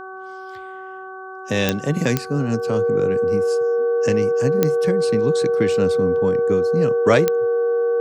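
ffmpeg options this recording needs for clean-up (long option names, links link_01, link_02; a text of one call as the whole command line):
ffmpeg -i in.wav -af "adeclick=threshold=4,bandreject=frequency=378.5:width_type=h:width=4,bandreject=frequency=757:width_type=h:width=4,bandreject=frequency=1135.5:width_type=h:width=4,bandreject=frequency=1514:width_type=h:width=4,bandreject=frequency=470:width=30" out.wav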